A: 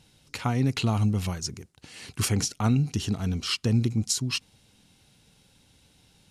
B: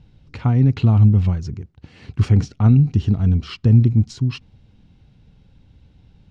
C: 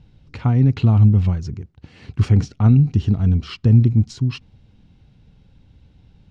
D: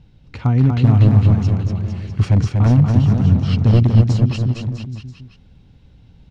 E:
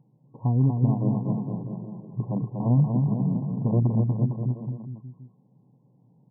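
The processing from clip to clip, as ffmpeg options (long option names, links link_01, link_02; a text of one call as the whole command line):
ffmpeg -i in.wav -af "lowpass=5600,aemphasis=mode=reproduction:type=riaa" out.wav
ffmpeg -i in.wav -af anull out.wav
ffmpeg -i in.wav -af "aeval=exprs='0.447*(abs(mod(val(0)/0.447+3,4)-2)-1)':channel_layout=same,aecho=1:1:240|456|650.4|825.4|982.8:0.631|0.398|0.251|0.158|0.1,volume=1dB" out.wav
ffmpeg -i in.wav -af "afftfilt=real='re*between(b*sr/4096,110,1100)':imag='im*between(b*sr/4096,110,1100)':win_size=4096:overlap=0.75,volume=-7dB" out.wav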